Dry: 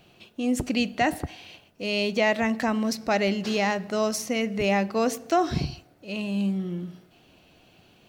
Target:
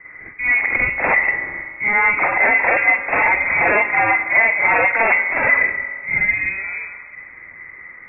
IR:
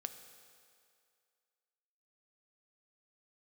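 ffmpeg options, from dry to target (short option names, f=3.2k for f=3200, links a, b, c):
-filter_complex "[0:a]highpass=f=670:t=q:w=4.9,aeval=exprs='0.376*sin(PI/2*4.47*val(0)/0.376)':c=same,asplit=2[a][b];[1:a]atrim=start_sample=2205,lowshelf=f=360:g=-5,adelay=46[c];[b][c]afir=irnorm=-1:irlink=0,volume=9dB[d];[a][d]amix=inputs=2:normalize=0,lowpass=f=2.3k:t=q:w=0.5098,lowpass=f=2.3k:t=q:w=0.6013,lowpass=f=2.3k:t=q:w=0.9,lowpass=f=2.3k:t=q:w=2.563,afreqshift=-2700,volume=-8dB"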